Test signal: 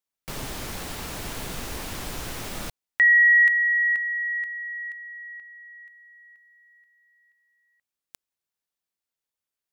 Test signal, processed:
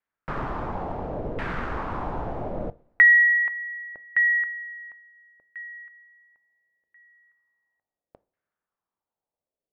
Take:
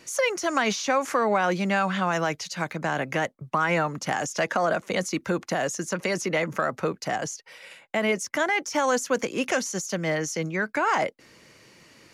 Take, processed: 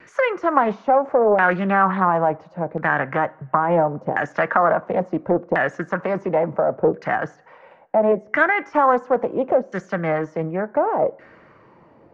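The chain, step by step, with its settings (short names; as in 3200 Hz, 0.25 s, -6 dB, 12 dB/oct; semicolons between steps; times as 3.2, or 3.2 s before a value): LFO low-pass saw down 0.72 Hz 500–1800 Hz; vibrato 0.34 Hz 5.7 cents; two-slope reverb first 0.37 s, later 1.8 s, from -20 dB, DRR 16 dB; Doppler distortion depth 0.28 ms; gain +3.5 dB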